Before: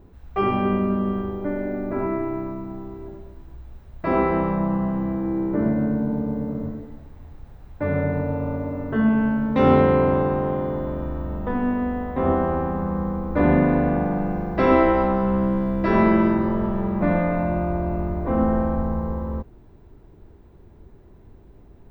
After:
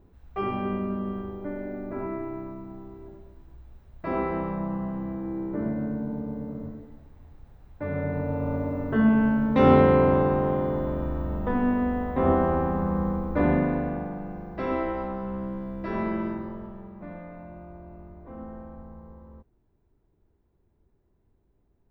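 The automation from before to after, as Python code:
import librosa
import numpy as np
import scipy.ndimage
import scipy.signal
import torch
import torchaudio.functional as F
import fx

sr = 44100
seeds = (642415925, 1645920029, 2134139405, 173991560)

y = fx.gain(x, sr, db=fx.line((7.89, -7.5), (8.57, -1.0), (13.11, -1.0), (14.19, -11.5), (16.3, -11.5), (16.96, -20.0)))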